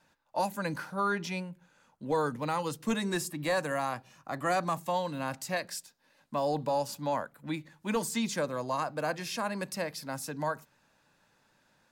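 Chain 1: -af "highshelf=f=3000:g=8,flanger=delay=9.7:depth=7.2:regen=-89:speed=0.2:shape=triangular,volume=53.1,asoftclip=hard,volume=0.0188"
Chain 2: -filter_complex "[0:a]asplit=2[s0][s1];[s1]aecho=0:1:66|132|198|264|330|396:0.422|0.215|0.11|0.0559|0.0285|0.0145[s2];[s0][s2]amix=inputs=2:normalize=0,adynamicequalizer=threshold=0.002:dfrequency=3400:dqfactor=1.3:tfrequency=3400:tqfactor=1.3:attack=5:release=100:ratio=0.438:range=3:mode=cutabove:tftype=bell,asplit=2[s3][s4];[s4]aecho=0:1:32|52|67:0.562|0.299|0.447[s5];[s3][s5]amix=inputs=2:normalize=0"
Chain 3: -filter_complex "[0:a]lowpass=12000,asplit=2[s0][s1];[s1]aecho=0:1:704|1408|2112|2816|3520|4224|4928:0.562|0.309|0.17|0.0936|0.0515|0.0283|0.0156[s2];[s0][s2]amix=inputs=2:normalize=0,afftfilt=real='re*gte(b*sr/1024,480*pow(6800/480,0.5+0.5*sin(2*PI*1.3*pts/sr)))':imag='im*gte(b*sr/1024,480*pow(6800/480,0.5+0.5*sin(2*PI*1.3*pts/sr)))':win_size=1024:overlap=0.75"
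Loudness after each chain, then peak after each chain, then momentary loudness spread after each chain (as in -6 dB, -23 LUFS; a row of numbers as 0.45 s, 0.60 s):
-39.0 LUFS, -30.5 LUFS, -38.0 LUFS; -34.5 dBFS, -15.0 dBFS, -18.5 dBFS; 7 LU, 8 LU, 14 LU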